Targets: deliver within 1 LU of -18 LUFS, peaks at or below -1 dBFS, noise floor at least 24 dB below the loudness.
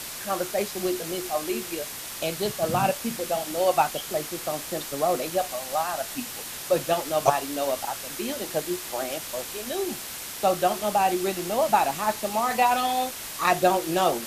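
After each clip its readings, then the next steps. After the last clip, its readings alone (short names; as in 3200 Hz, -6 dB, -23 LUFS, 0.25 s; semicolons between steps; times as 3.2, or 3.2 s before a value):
noise floor -37 dBFS; noise floor target -51 dBFS; loudness -26.5 LUFS; peak -4.5 dBFS; loudness target -18.0 LUFS
-> denoiser 14 dB, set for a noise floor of -37 dBFS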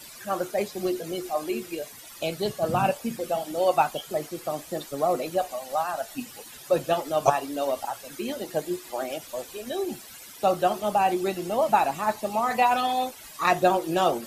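noise floor -45 dBFS; noise floor target -51 dBFS
-> denoiser 6 dB, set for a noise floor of -45 dBFS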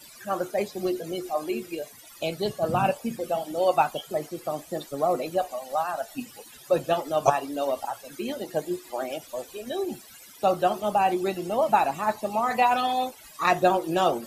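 noise floor -49 dBFS; noise floor target -51 dBFS
-> denoiser 6 dB, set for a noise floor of -49 dBFS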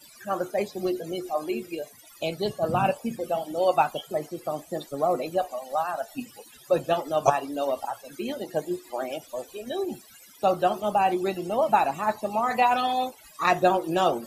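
noise floor -52 dBFS; loudness -27.0 LUFS; peak -5.0 dBFS; loudness target -18.0 LUFS
-> gain +9 dB; limiter -1 dBFS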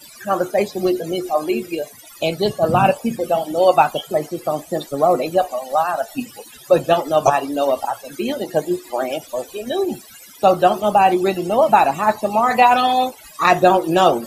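loudness -18.5 LUFS; peak -1.0 dBFS; noise floor -43 dBFS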